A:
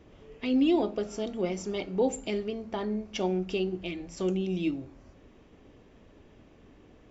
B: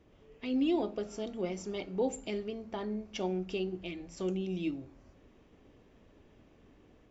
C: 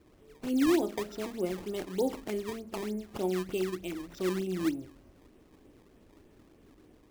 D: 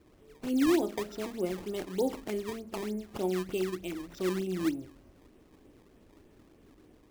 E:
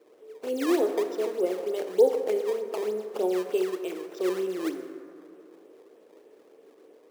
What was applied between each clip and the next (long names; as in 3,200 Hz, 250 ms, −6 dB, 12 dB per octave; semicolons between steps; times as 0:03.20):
automatic gain control gain up to 3 dB; level −8 dB
sample-and-hold swept by an LFO 18×, swing 160% 3.3 Hz; parametric band 330 Hz +5.5 dB 0.6 octaves
no processing that can be heard
high-pass with resonance 460 Hz, resonance Q 4.3; on a send at −8.5 dB: convolution reverb RT60 2.5 s, pre-delay 27 ms